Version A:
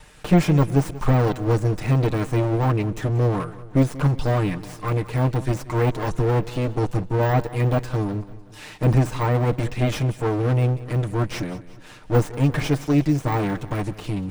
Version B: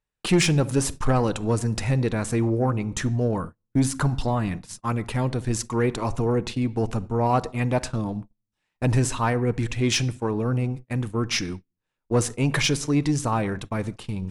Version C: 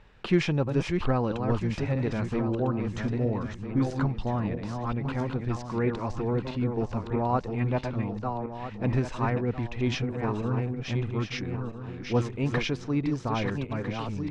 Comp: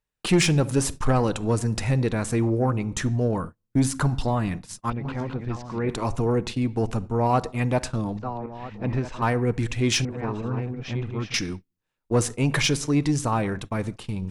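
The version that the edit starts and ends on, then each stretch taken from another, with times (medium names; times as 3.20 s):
B
4.90–5.89 s: from C
8.17–9.22 s: from C
10.05–11.34 s: from C
not used: A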